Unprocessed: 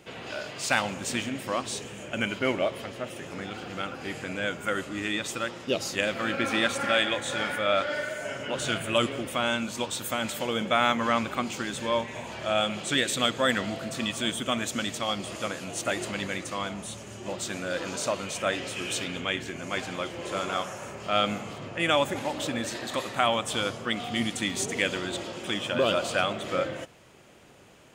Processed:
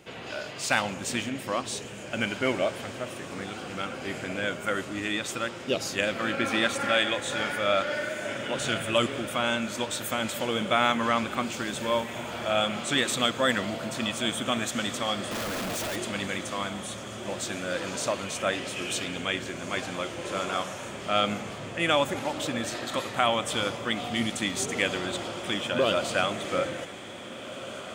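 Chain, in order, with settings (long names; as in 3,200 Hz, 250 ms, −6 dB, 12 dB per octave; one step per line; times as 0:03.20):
feedback delay with all-pass diffusion 1,817 ms, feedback 60%, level −13 dB
0:15.31–0:15.96: comparator with hysteresis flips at −43.5 dBFS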